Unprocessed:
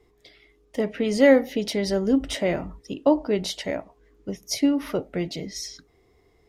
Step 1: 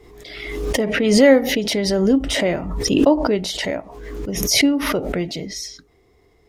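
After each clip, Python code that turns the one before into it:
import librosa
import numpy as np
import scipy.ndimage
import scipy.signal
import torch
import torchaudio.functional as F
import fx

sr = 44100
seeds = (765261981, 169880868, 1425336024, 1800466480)

y = fx.pre_swell(x, sr, db_per_s=39.0)
y = y * 10.0 ** (3.5 / 20.0)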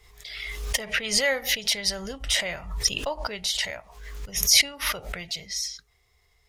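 y = fx.tone_stack(x, sr, knobs='10-0-10')
y = y * 10.0 ** (1.5 / 20.0)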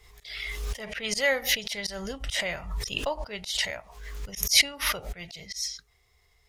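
y = fx.auto_swell(x, sr, attack_ms=108.0)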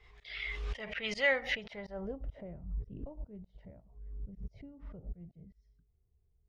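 y = fx.filter_sweep_lowpass(x, sr, from_hz=2800.0, to_hz=240.0, start_s=1.32, end_s=2.61, q=1.1)
y = y * 10.0 ** (-5.0 / 20.0)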